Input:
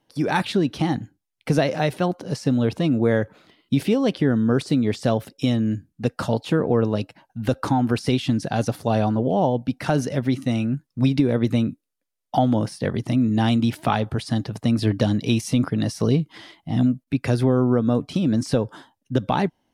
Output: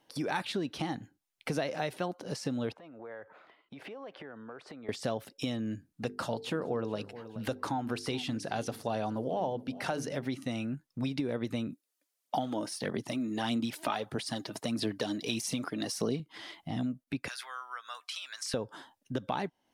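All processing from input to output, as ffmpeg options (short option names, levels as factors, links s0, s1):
-filter_complex "[0:a]asettb=1/sr,asplit=3[s0][s1][s2];[s0]atrim=end=2.724[s3];[s1]atrim=start=2.72:end=4.89,asetpts=PTS-STARTPTS,afade=t=in:d=0.004:c=qsin,afade=t=out:st=2.166:d=0.004:c=qsin,lowpass=f=2800:p=1,acrossover=split=510 2100:gain=0.158 1 0.2[s4][s5][s6];[s4][s5][s6]amix=inputs=3:normalize=0,acompressor=threshold=0.00794:ratio=6:attack=3.2:release=140:knee=1:detection=peak[s7];[s2]atrim=start=4.886[s8];[s3][s7]acrossfade=d=0.004:c1=hsin:c2=qsin[s9];[s9][s8]acrossfade=d=0.004:c1=qsin:c2=hsin,asettb=1/sr,asplit=3[s10][s11][s12];[s10]atrim=end=5.924[s13];[s11]atrim=start=5.92:end=10.26,asetpts=PTS-STARTPTS,afade=t=in:d=0.004:c=qsin,afade=t=out:st=4.336:d=0.004:c=qsin,bandreject=f=50:t=h:w=6,bandreject=f=100:t=h:w=6,bandreject=f=150:t=h:w=6,bandreject=f=200:t=h:w=6,bandreject=f=250:t=h:w=6,bandreject=f=300:t=h:w=6,bandreject=f=350:t=h:w=6,bandreject=f=400:t=h:w=6,bandreject=f=450:t=h:w=6,aecho=1:1:426|852:0.0841|0.0185,atrim=end_sample=191394[s14];[s12]atrim=start=10.256[s15];[s13][s14]acrossfade=d=0.004:c1=hsin:c2=qsin[s16];[s16][s15]acrossfade=d=0.004:c1=qsin:c2=hsin,asettb=1/sr,asplit=3[s17][s18][s19];[s17]atrim=end=11.704[s20];[s18]atrim=start=11.7:end=16.2,asetpts=PTS-STARTPTS,afade=t=in:d=0.004:c=qsin,afade=t=out:st=4.496:d=0.004:c=qsin,highpass=180,bass=f=250:g=2,treble=f=4000:g=4,aphaser=in_gain=1:out_gain=1:delay=3.3:decay=0.48:speed=1.6:type=sinusoidal[s21];[s19]atrim=start=16.196[s22];[s20][s21]acrossfade=d=0.004:c1=hsin:c2=qsin[s23];[s23][s22]acrossfade=d=0.004:c1=qsin:c2=hsin,asettb=1/sr,asplit=3[s24][s25][s26];[s24]atrim=end=17.284[s27];[s25]atrim=start=17.28:end=18.54,asetpts=PTS-STARTPTS,afade=t=in:d=0.004:c=qsin,afade=t=out:st=1.256:d=0.004:c=qsin,highpass=f=1300:w=0.5412,highpass=f=1300:w=1.3066,asoftclip=type=hard:threshold=0.0562[s28];[s26]atrim=start=18.536[s29];[s27][s28]acrossfade=d=0.004:c1=hsin:c2=qsin[s30];[s30][s29]acrossfade=d=0.004:c1=qsin:c2=hsin,lowshelf=f=230:g=-11,acompressor=threshold=0.00794:ratio=2,volume=1.33"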